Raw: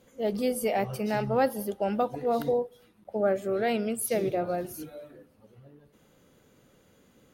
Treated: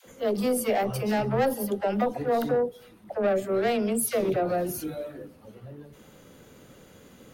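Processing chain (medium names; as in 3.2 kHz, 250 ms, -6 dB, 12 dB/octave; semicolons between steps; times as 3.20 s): in parallel at +2 dB: compression, threshold -40 dBFS, peak gain reduction 19 dB; on the sum: saturation -21 dBFS, distortion -15 dB; phase dispersion lows, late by 66 ms, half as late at 450 Hz; trim +2.5 dB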